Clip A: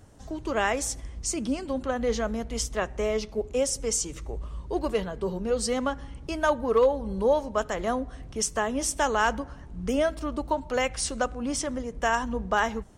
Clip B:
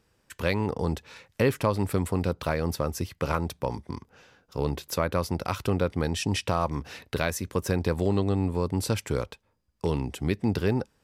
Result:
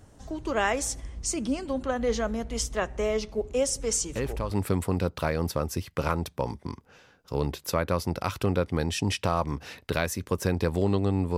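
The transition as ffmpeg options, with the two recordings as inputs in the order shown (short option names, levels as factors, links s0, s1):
-filter_complex "[1:a]asplit=2[s0][s1];[0:a]apad=whole_dur=11.37,atrim=end=11.37,atrim=end=4.512[s2];[s1]atrim=start=1.748:end=8.61[s3];[s0]atrim=start=1.05:end=1.75,asetpts=PTS-STARTPTS,volume=0.398,afade=t=in:d=0.004:c=hsin,afade=t=out:st=0.696:d=0.004:c=hsin,adelay=168021S[s4];[s2][s3]acrossfade=d=0.004:c1=hsin:c2=hsin[s5];[s5][s4]amix=inputs=2:normalize=0"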